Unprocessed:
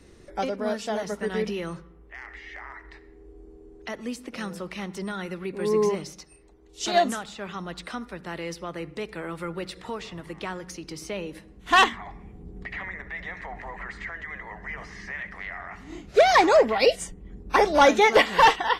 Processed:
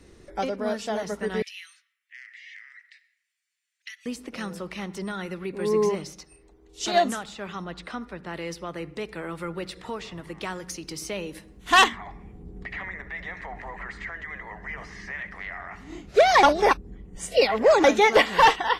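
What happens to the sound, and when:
1.42–4.06 s: steep high-pass 1.9 kHz
7.64–8.34 s: low-pass 3.9 kHz 6 dB/octave
10.41–11.88 s: treble shelf 4.4 kHz +7.5 dB
16.43–17.84 s: reverse

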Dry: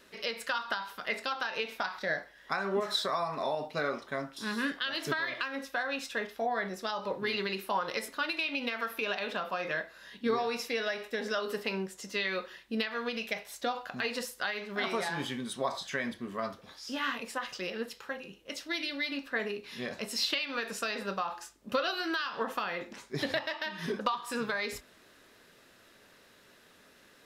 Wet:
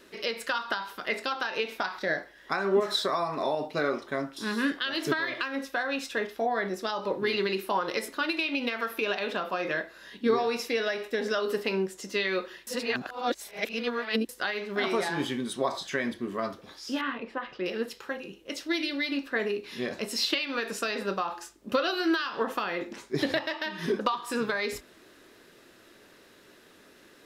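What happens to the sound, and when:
12.67–14.29 s: reverse
17.01–17.66 s: distance through air 370 m
whole clip: peaking EQ 340 Hz +8 dB 0.64 oct; trim +2.5 dB

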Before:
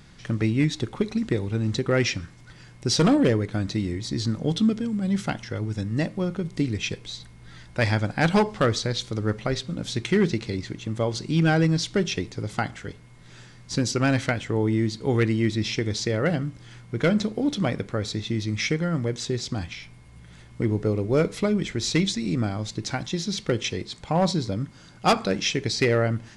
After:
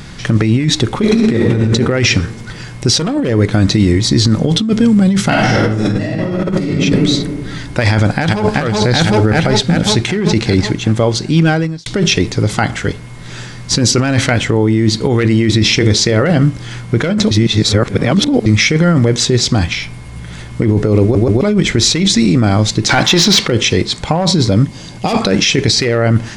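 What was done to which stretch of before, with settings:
1.01–1.61 s: reverb throw, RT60 1.6 s, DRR -1 dB
5.29–6.62 s: reverb throw, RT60 1.6 s, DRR -10 dB
7.90–8.47 s: echo throw 380 ms, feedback 60%, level -3 dB
9.04–9.87 s: band-stop 1.1 kHz, Q 6.6
10.66–11.86 s: fade out
15.17–16.27 s: hum notches 60/120/180/240/300/360/420/480/540/600 Hz
17.31–18.46 s: reverse
21.02 s: stutter in place 0.13 s, 3 plays
22.89–23.48 s: overdrive pedal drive 18 dB, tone 2.9 kHz, clips at -14.5 dBFS
24.64–25.22 s: peaking EQ 1.4 kHz -14.5 dB 0.35 oct
whole clip: compressor with a negative ratio -26 dBFS, ratio -1; loudness maximiser +16.5 dB; trim -1 dB

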